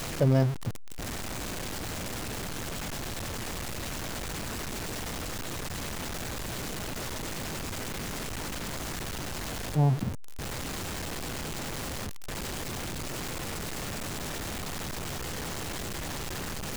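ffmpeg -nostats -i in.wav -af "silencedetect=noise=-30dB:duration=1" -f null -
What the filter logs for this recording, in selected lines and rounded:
silence_start: 0.69
silence_end: 9.76 | silence_duration: 9.07
silence_start: 10.09
silence_end: 16.76 | silence_duration: 6.68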